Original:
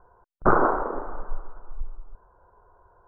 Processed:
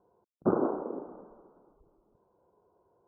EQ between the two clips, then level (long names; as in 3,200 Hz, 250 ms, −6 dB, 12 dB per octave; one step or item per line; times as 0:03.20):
four-pole ladder band-pass 280 Hz, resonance 25%
high-frequency loss of the air 260 metres
+9.0 dB